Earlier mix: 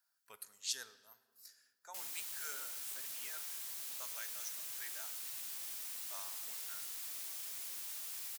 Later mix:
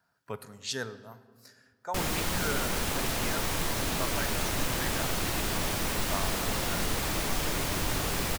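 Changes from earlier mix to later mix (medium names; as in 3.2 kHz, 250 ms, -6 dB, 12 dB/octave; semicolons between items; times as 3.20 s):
background +11.0 dB; master: remove differentiator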